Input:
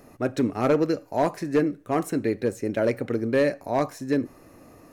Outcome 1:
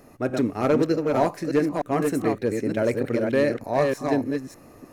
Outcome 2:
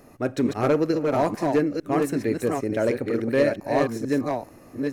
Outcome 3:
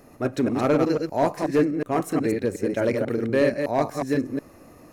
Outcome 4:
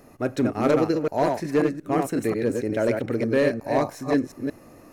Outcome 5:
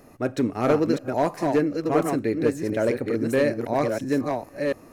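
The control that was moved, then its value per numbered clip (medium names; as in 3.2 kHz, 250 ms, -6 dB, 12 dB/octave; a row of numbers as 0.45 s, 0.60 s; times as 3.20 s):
chunks repeated in reverse, time: 303 ms, 450 ms, 122 ms, 180 ms, 675 ms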